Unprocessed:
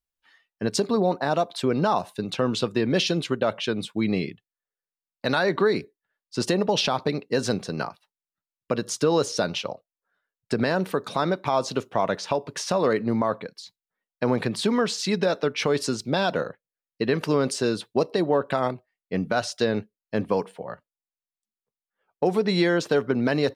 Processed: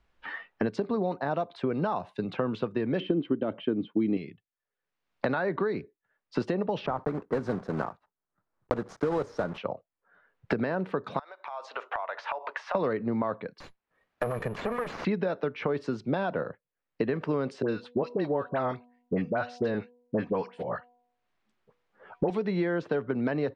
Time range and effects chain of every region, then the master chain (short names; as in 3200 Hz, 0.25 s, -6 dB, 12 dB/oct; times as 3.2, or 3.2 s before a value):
3–4.17 air absorption 290 m + small resonant body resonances 290/3100 Hz, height 17 dB, ringing for 30 ms
6.86–9.58 block floating point 3-bit + EQ curve 1300 Hz 0 dB, 2800 Hz -15 dB, 9500 Hz -6 dB
11.19–12.75 HPF 700 Hz 24 dB/oct + compressor 8:1, threshold -40 dBFS
13.6–15.05 minimum comb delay 1.7 ms + compressor 1.5:1, threshold -43 dBFS + careless resampling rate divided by 4×, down none, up zero stuff
17.62–22.3 de-hum 243.6 Hz, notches 4 + dispersion highs, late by 65 ms, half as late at 1200 Hz
whole clip: LPF 2100 Hz 12 dB/oct; three-band squash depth 100%; gain -6 dB